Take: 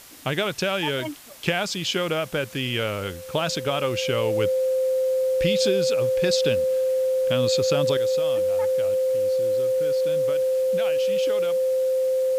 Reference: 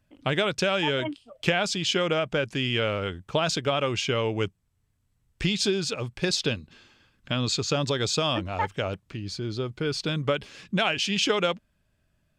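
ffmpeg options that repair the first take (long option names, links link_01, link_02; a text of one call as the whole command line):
ffmpeg -i in.wav -af "bandreject=frequency=520:width=30,afwtdn=0.0056,asetnsamples=nb_out_samples=441:pad=0,asendcmd='7.97 volume volume 10.5dB',volume=0dB" out.wav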